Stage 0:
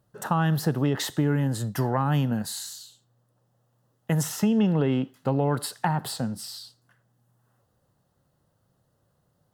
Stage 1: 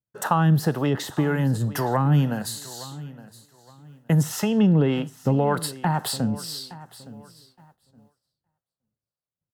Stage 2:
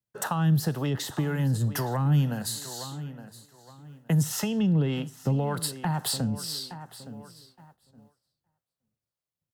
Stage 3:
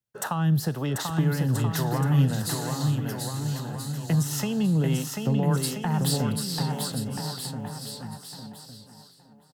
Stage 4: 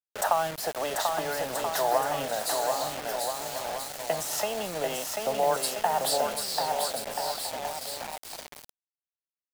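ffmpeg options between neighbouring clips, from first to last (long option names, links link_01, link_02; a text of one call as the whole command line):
ffmpeg -i in.wav -filter_complex "[0:a]acrossover=split=420[link_01][link_02];[link_01]aeval=exprs='val(0)*(1-0.7/2+0.7/2*cos(2*PI*1.9*n/s))':channel_layout=same[link_03];[link_02]aeval=exprs='val(0)*(1-0.7/2-0.7/2*cos(2*PI*1.9*n/s))':channel_layout=same[link_04];[link_03][link_04]amix=inputs=2:normalize=0,aecho=1:1:866|1732|2598:0.126|0.039|0.0121,agate=range=-33dB:threshold=-53dB:ratio=3:detection=peak,volume=6.5dB" out.wav
ffmpeg -i in.wav -filter_complex "[0:a]acrossover=split=150|3000[link_01][link_02][link_03];[link_02]acompressor=threshold=-35dB:ratio=2[link_04];[link_01][link_04][link_03]amix=inputs=3:normalize=0" out.wav
ffmpeg -i in.wav -af "aecho=1:1:740|1332|1806|2184|2488:0.631|0.398|0.251|0.158|0.1" out.wav
ffmpeg -i in.wav -af "highpass=frequency=640:width_type=q:width=4.9,acrusher=bits=5:mix=0:aa=0.000001" out.wav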